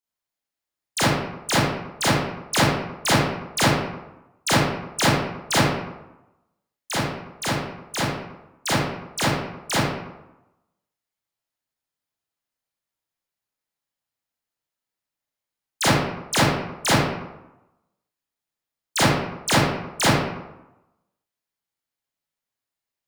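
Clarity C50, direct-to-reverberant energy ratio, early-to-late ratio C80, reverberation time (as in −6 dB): −1.5 dB, −8.5 dB, 2.5 dB, 0.95 s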